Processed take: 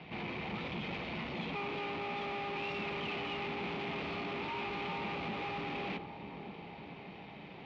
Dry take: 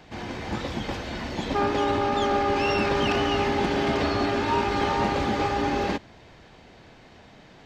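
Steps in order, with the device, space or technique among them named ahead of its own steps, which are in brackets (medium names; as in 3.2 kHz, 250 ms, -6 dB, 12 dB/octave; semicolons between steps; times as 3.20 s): analogue delay pedal into a guitar amplifier (bucket-brigade echo 595 ms, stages 4096, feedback 62%, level -21 dB; valve stage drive 39 dB, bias 0.45; cabinet simulation 95–3600 Hz, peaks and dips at 97 Hz -8 dB, 170 Hz +7 dB, 280 Hz -4 dB, 580 Hz -4 dB, 1.6 kHz -9 dB, 2.4 kHz +8 dB); trim +2 dB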